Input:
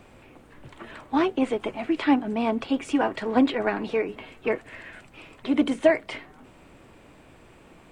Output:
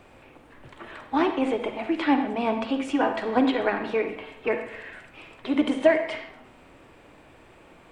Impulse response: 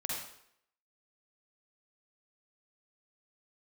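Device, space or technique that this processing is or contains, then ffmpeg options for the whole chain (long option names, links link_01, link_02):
filtered reverb send: -filter_complex "[0:a]asplit=2[link_01][link_02];[link_02]highpass=frequency=180:width=0.5412,highpass=frequency=180:width=1.3066,lowpass=4800[link_03];[1:a]atrim=start_sample=2205[link_04];[link_03][link_04]afir=irnorm=-1:irlink=0,volume=-5dB[link_05];[link_01][link_05]amix=inputs=2:normalize=0,volume=-2.5dB"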